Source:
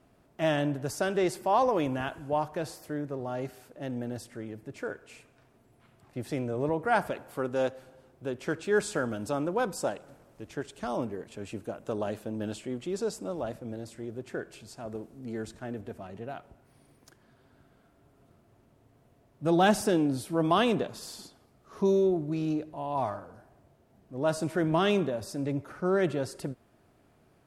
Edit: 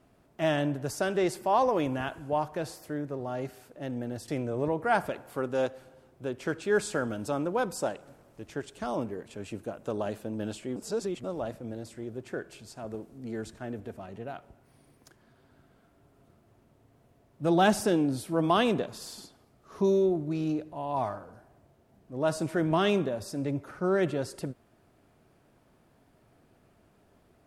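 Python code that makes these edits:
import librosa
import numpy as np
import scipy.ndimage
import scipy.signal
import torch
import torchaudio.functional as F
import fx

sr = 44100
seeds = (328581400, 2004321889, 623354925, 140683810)

y = fx.edit(x, sr, fx.cut(start_s=4.28, length_s=2.01),
    fx.reverse_span(start_s=12.77, length_s=0.48), tone=tone)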